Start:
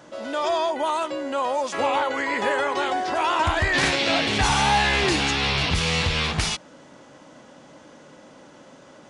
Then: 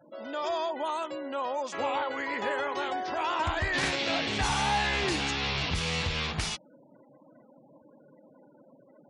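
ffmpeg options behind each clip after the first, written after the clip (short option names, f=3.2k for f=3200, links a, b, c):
-af "afftfilt=real='re*gte(hypot(re,im),0.01)':imag='im*gte(hypot(re,im),0.01)':win_size=1024:overlap=0.75,volume=-7.5dB"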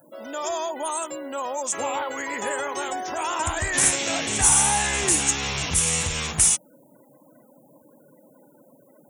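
-af "aexciter=amount=11.6:drive=9:freq=6.9k,volume=2.5dB"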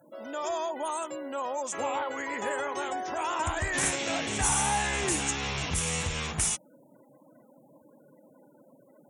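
-af "aemphasis=mode=reproduction:type=cd,volume=-3.5dB"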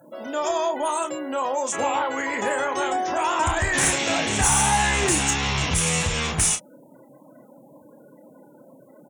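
-filter_complex "[0:a]asoftclip=type=tanh:threshold=-18dB,asplit=2[a][b];[b]adelay=30,volume=-8dB[c];[a][c]amix=inputs=2:normalize=0,volume=7.5dB"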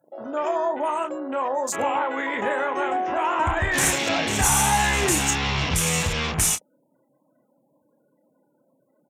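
-af "afwtdn=0.02"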